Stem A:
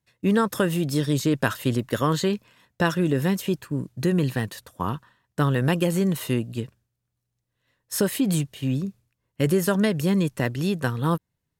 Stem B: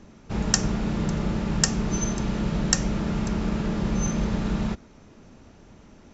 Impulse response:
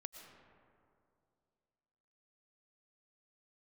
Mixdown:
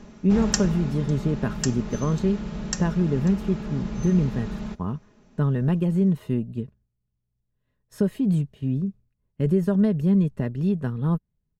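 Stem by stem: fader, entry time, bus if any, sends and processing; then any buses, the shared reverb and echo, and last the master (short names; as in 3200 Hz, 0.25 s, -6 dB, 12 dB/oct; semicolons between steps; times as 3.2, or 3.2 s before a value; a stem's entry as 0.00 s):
-9.5 dB, 0.00 s, no send, tilt -4 dB/oct
+3.0 dB, 0.00 s, no send, auto duck -11 dB, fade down 1.00 s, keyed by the first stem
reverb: off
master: comb 4.8 ms, depth 44%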